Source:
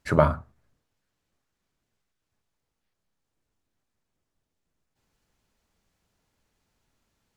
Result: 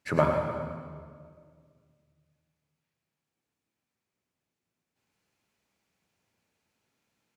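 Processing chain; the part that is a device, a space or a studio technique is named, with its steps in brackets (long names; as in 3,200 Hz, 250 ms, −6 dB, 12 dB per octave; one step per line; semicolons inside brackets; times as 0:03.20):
PA in a hall (high-pass filter 120 Hz 12 dB per octave; parametric band 2,400 Hz +5.5 dB 0.41 octaves; single-tap delay 107 ms −8 dB; convolution reverb RT60 2.0 s, pre-delay 71 ms, DRR 4.5 dB)
level −4.5 dB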